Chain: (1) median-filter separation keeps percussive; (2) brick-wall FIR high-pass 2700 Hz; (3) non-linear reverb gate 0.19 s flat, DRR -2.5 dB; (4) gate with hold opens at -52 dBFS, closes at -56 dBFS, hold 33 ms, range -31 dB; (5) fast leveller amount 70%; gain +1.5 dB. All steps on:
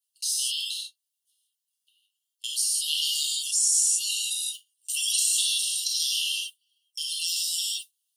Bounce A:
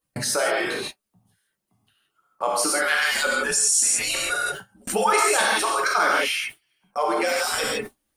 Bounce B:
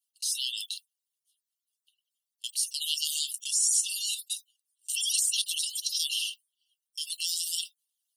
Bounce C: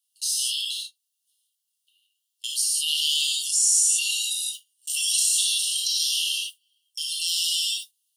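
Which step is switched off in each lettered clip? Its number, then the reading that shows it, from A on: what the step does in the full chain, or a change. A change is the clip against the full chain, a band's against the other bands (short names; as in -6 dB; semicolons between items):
2, momentary loudness spread change -2 LU; 3, loudness change -4.0 LU; 1, loudness change +2.5 LU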